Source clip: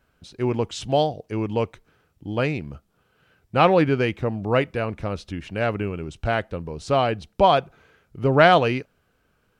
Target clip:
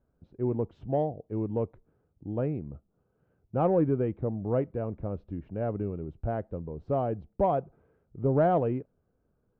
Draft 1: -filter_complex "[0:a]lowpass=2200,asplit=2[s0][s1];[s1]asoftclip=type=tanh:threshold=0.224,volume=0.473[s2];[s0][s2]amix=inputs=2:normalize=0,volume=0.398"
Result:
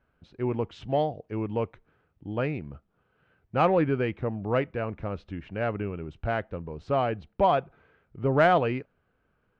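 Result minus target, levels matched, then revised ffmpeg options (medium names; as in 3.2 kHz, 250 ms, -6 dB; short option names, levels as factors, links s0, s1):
2 kHz band +13.5 dB
-filter_complex "[0:a]lowpass=620,asplit=2[s0][s1];[s1]asoftclip=type=tanh:threshold=0.224,volume=0.473[s2];[s0][s2]amix=inputs=2:normalize=0,volume=0.398"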